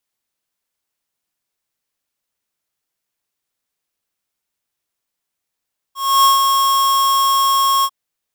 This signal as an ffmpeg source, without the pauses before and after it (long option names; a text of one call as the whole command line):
ffmpeg -f lavfi -i "aevalsrc='0.316*(2*lt(mod(1090*t,1),0.5)-1)':duration=1.945:sample_rate=44100,afade=type=in:duration=0.291,afade=type=out:start_time=0.291:duration=0.143:silence=0.596,afade=type=out:start_time=1.89:duration=0.055" out.wav